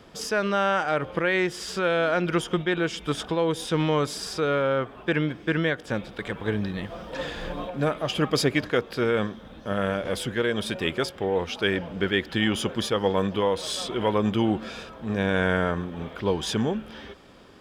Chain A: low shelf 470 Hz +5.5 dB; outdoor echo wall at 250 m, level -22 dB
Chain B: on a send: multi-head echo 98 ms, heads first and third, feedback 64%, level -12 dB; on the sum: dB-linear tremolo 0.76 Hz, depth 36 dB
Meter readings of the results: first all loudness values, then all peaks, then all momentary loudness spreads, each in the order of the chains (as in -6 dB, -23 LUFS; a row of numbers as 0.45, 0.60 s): -23.5, -29.5 LUFS; -7.5, -9.5 dBFS; 9, 22 LU